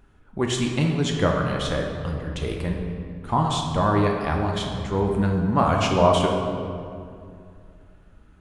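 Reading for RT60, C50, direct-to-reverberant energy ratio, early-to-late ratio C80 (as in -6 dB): 2.3 s, 2.5 dB, 0.5 dB, 4.5 dB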